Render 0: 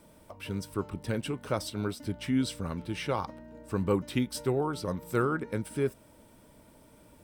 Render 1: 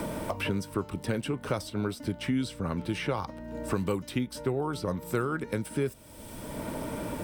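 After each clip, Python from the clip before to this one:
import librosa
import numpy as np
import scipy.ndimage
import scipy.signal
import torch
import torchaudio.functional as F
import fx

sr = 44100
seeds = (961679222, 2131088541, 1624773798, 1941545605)

y = fx.band_squash(x, sr, depth_pct=100)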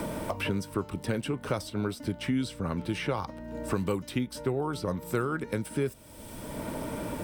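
y = x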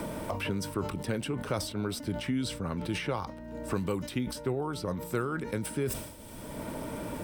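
y = fx.sustainer(x, sr, db_per_s=69.0)
y = F.gain(torch.from_numpy(y), -2.5).numpy()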